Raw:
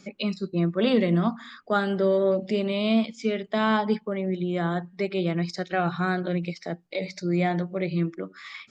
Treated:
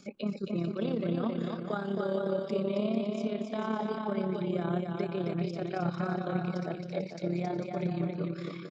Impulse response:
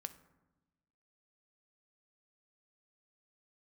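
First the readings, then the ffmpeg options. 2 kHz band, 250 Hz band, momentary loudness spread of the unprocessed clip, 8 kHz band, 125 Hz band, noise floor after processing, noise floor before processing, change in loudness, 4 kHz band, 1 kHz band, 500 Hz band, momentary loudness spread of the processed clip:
-12.0 dB, -6.0 dB, 9 LU, n/a, -5.5 dB, -43 dBFS, -57 dBFS, -7.0 dB, -12.0 dB, -8.0 dB, -6.5 dB, 5 LU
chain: -filter_complex "[0:a]equalizer=f=1.9k:w=5.1:g=-10,acrossover=split=1600[a][b];[a]alimiter=limit=-22.5dB:level=0:latency=1:release=328[c];[b]acompressor=threshold=-49dB:ratio=6[d];[c][d]amix=inputs=2:normalize=0,tremolo=f=34:d=0.621,aecho=1:1:270|445.5|559.6|633.7|681.9:0.631|0.398|0.251|0.158|0.1"

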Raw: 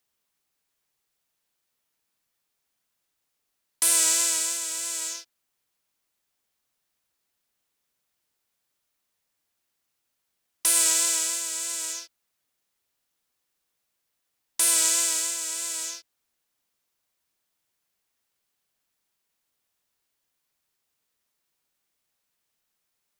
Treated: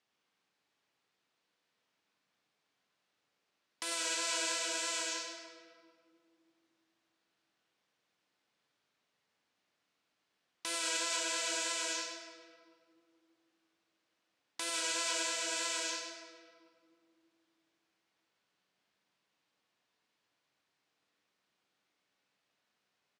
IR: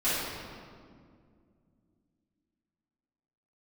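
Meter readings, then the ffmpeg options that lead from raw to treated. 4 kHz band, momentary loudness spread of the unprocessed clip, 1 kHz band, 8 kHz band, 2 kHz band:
-5.5 dB, 14 LU, -1.0 dB, -14.5 dB, -2.0 dB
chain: -filter_complex "[0:a]aecho=1:1:100|200|300|400|500:0.398|0.163|0.0669|0.0274|0.0112,asplit=2[a][b];[1:a]atrim=start_sample=2205[c];[b][c]afir=irnorm=-1:irlink=0,volume=-14dB[d];[a][d]amix=inputs=2:normalize=0,alimiter=limit=-14dB:level=0:latency=1:release=322,highpass=130,lowpass=4.2k"

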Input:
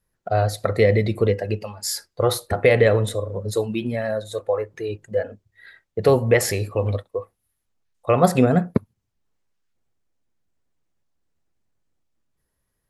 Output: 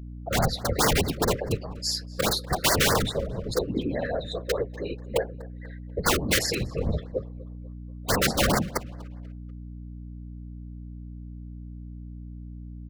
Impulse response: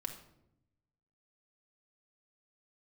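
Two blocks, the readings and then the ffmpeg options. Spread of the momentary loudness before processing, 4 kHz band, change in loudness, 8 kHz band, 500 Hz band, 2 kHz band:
12 LU, +6.0 dB, -4.5 dB, +3.0 dB, -8.5 dB, -1.0 dB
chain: -filter_complex "[0:a]aemphasis=mode=reproduction:type=cd,afftdn=nr=16:nf=-44,equalizer=f=4.3k:t=o:w=1.5:g=12,flanger=delay=2.6:depth=9.4:regen=-45:speed=0.78:shape=triangular,aeval=exprs='(mod(5.31*val(0)+1,2)-1)/5.31':c=same,afftfilt=real='hypot(re,im)*cos(2*PI*random(0))':imag='hypot(re,im)*sin(2*PI*random(1))':win_size=512:overlap=0.75,aeval=exprs='val(0)+0.00708*(sin(2*PI*60*n/s)+sin(2*PI*2*60*n/s)/2+sin(2*PI*3*60*n/s)/3+sin(2*PI*4*60*n/s)/4+sin(2*PI*5*60*n/s)/5)':c=same,asplit=2[a][b];[b]adelay=244,lowpass=f=3.4k:p=1,volume=-20dB,asplit=2[c][d];[d]adelay=244,lowpass=f=3.4k:p=1,volume=0.43,asplit=2[e][f];[f]adelay=244,lowpass=f=3.4k:p=1,volume=0.43[g];[a][c][e][g]amix=inputs=4:normalize=0,afftfilt=real='re*(1-between(b*sr/1024,790*pow(3100/790,0.5+0.5*sin(2*PI*4.8*pts/sr))/1.41,790*pow(3100/790,0.5+0.5*sin(2*PI*4.8*pts/sr))*1.41))':imag='im*(1-between(b*sr/1024,790*pow(3100/790,0.5+0.5*sin(2*PI*4.8*pts/sr))/1.41,790*pow(3100/790,0.5+0.5*sin(2*PI*4.8*pts/sr))*1.41))':win_size=1024:overlap=0.75,volume=5.5dB"

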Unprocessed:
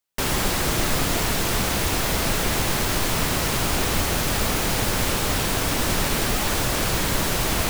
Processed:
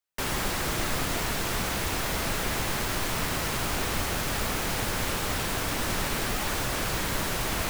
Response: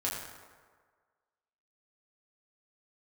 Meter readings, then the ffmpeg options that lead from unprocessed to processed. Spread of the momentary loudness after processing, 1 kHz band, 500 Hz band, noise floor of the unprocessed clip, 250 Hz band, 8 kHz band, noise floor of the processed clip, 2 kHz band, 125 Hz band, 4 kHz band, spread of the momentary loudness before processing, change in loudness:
0 LU, -5.0 dB, -6.5 dB, -24 dBFS, -7.0 dB, -7.0 dB, -30 dBFS, -4.5 dB, -7.0 dB, -6.5 dB, 0 LU, -6.0 dB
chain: -filter_complex "[0:a]acrossover=split=230|2000[a][b][c];[b]crystalizer=i=5.5:c=0[d];[a][d][c]amix=inputs=3:normalize=0,volume=-7dB"

